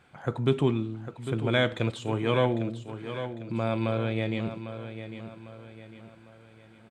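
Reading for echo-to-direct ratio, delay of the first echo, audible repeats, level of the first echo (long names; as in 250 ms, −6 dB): −9.5 dB, 801 ms, 4, −10.5 dB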